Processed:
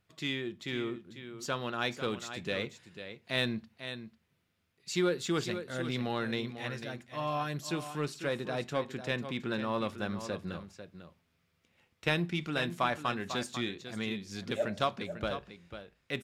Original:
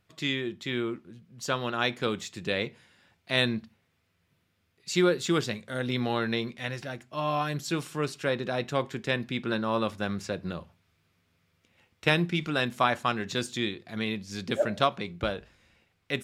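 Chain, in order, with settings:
single-tap delay 496 ms −11 dB
in parallel at −10 dB: hard clipping −25.5 dBFS, distortion −8 dB
on the sum: level −7 dB

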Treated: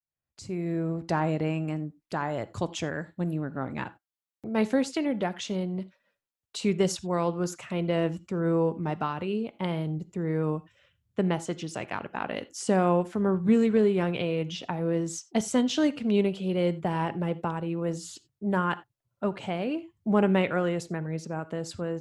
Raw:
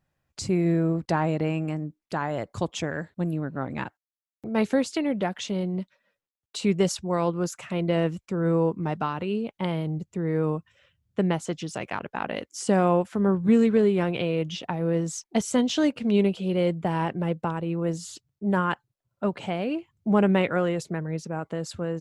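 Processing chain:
fade in at the beginning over 1.20 s
on a send: convolution reverb, pre-delay 3 ms, DRR 15.5 dB
on the sum: level −2 dB

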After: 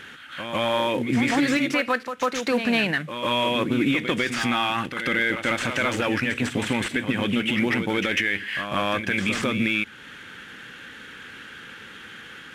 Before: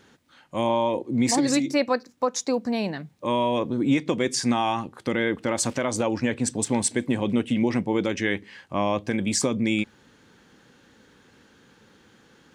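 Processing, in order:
variable-slope delta modulation 64 kbit/s
de-essing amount 75%
flat-topped bell 2,100 Hz +13 dB
in parallel at 0 dB: downward compressor, threshold −30 dBFS, peak gain reduction 16.5 dB
on the sum: brickwall limiter −13 dBFS, peak gain reduction 9.5 dB
on a send: backwards echo 148 ms −8 dB

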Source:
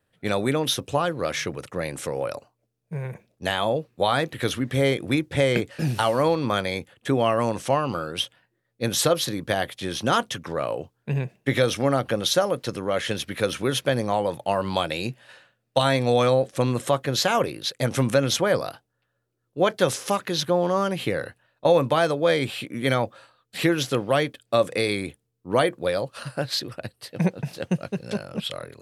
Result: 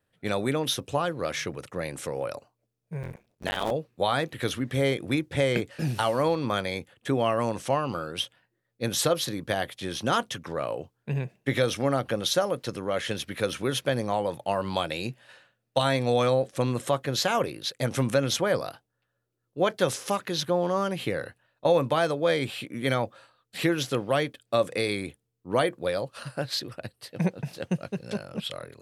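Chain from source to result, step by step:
0:03.02–0:03.71: sub-harmonics by changed cycles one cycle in 3, muted
level −3.5 dB

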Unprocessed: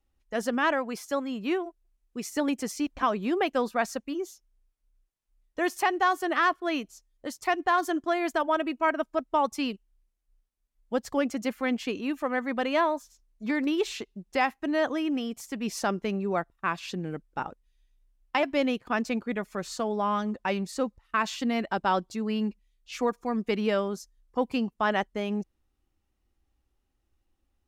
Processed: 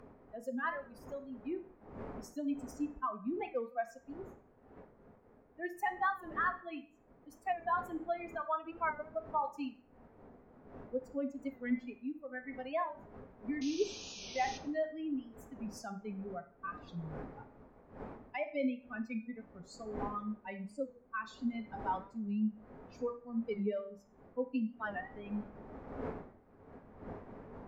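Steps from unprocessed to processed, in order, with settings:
spectral dynamics exaggerated over time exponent 3
wind on the microphone 530 Hz −52 dBFS
flat-topped bell 5,900 Hz −10 dB 2.5 octaves
in parallel at +3 dB: downward compressor, threshold −47 dBFS, peak gain reduction 21 dB
on the sum: sound drawn into the spectrogram noise, 0:13.61–0:14.58, 2,300–6,600 Hz −43 dBFS
upward compression, threshold −52 dBFS
on a send at −6 dB: convolution reverb RT60 0.45 s, pre-delay 3 ms
on the sum: wow of a warped record 45 rpm, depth 100 cents
level −6 dB

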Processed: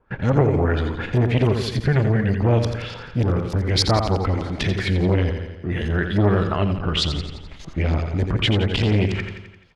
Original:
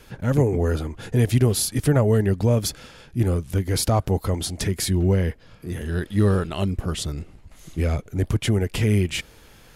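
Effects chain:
noise gate with hold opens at −36 dBFS
auto-filter low-pass saw up 3.4 Hz 880–5,300 Hz
in parallel at −1.5 dB: downward compressor, threshold −28 dBFS, peak gain reduction 14.5 dB
on the sum: gain on a spectral selection 0:01.65–0:02.34, 230–1,400 Hz −9 dB
repeating echo 86 ms, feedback 55%, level −8 dB
saturating transformer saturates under 490 Hz
level +1.5 dB

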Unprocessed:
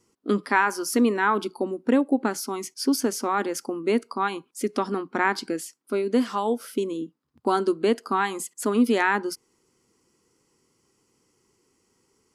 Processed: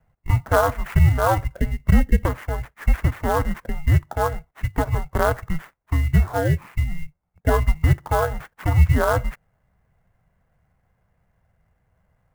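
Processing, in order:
samples in bit-reversed order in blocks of 16 samples
single-sideband voice off tune −320 Hz 160–2,500 Hz
converter with an unsteady clock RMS 0.025 ms
level +6 dB

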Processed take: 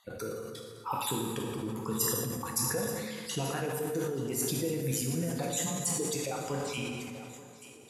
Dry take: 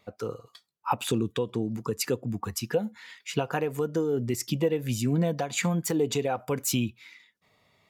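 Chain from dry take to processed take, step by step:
time-frequency cells dropped at random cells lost 32%
high-shelf EQ 5,400 Hz +8 dB
downward compressor 2 to 1, threshold −41 dBFS, peak gain reduction 11.5 dB
low-pass filter sweep 11,000 Hz → 410 Hz, 0:06.24–0:07.37
on a send: feedback echo with a high-pass in the loop 883 ms, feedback 58%, high-pass 230 Hz, level −17 dB
on the sum: dense smooth reverb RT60 2.1 s, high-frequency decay 0.65×, DRR −0.5 dB
level that may fall only so fast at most 26 dB per second

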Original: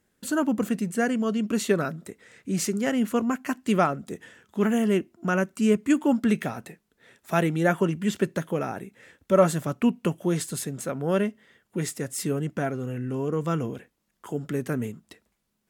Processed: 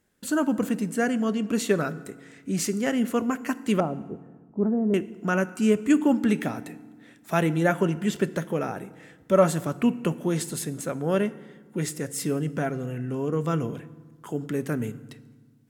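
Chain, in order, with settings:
0:03.80–0:04.94: Bessel low-pass filter 590 Hz, order 4
feedback delay network reverb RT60 1.4 s, low-frequency decay 1.45×, high-frequency decay 0.65×, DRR 14.5 dB

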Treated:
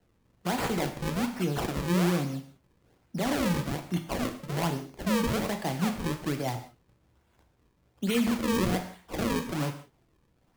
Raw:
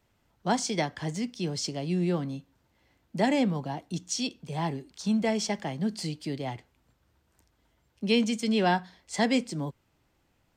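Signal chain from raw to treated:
brickwall limiter −22.5 dBFS, peak gain reduction 10 dB
sample-and-hold swept by an LFO 36×, swing 160% 1.2 Hz
reverb whose tail is shaped and stops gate 210 ms falling, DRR 5.5 dB
level +2 dB

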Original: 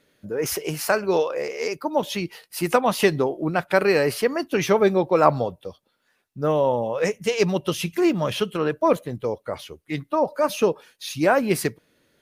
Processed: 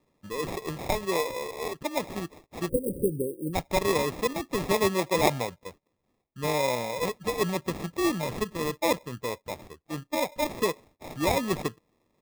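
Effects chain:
sample-rate reduction 1,500 Hz, jitter 0%
time-frequency box erased 0:02.69–0:03.54, 560–8,200 Hz
level −6.5 dB

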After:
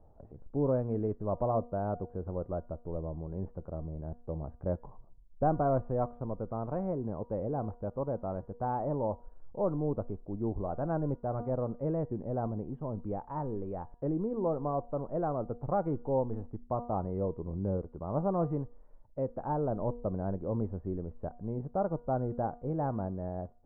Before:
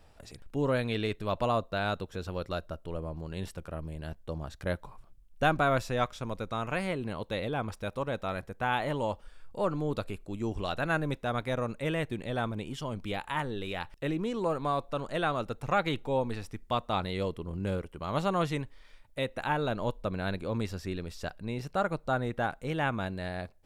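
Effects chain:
inverse Chebyshev low-pass filter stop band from 5,000 Hz, stop band 80 dB
hum removal 239.4 Hz, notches 8

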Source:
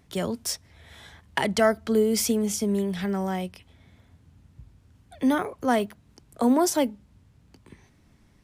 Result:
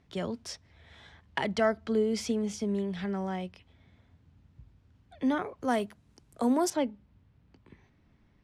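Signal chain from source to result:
low-pass filter 4,800 Hz 12 dB per octave, from 0:05.63 11,000 Hz, from 0:06.70 3,500 Hz
level −5.5 dB

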